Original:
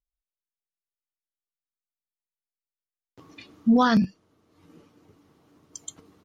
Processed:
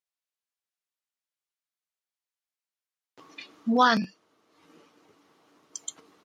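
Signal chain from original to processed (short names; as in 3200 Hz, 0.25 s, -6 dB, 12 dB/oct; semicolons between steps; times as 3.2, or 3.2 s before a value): weighting filter A; gain +2.5 dB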